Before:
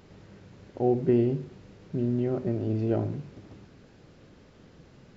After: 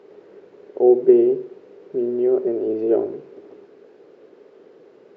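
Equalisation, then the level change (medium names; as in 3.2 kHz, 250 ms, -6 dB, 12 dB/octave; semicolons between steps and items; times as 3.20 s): resonant high-pass 410 Hz, resonance Q 4.9; low-pass 1.9 kHz 6 dB/octave; +2.0 dB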